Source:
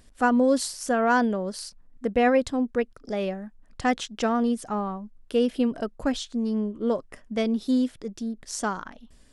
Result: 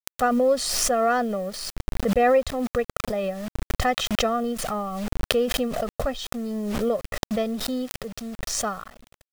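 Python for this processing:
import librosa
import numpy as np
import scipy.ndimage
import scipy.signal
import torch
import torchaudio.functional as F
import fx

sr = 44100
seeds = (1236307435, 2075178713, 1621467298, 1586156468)

y = fx.law_mismatch(x, sr, coded='A')
y = fx.lowpass(y, sr, hz=3200.0, slope=6)
y = y + 0.93 * np.pad(y, (int(1.6 * sr / 1000.0), 0))[:len(y)]
y = fx.dynamic_eq(y, sr, hz=120.0, q=3.9, threshold_db=-54.0, ratio=4.0, max_db=-6)
y = fx.quant_dither(y, sr, seeds[0], bits=8, dither='none')
y = fx.pre_swell(y, sr, db_per_s=27.0)
y = y * librosa.db_to_amplitude(-1.5)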